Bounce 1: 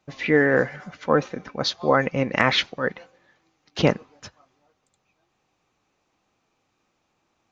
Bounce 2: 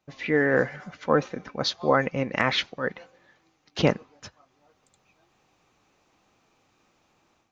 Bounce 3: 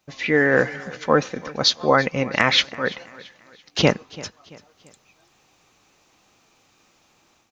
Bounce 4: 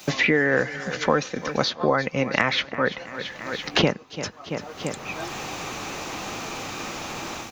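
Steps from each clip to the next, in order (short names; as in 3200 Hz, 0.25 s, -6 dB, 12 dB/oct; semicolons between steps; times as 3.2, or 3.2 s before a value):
AGC gain up to 11 dB; gain -5.5 dB
high shelf 2800 Hz +9 dB; feedback echo 0.337 s, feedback 40%, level -20 dB; gain +3.5 dB
three-band squash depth 100%; gain -1 dB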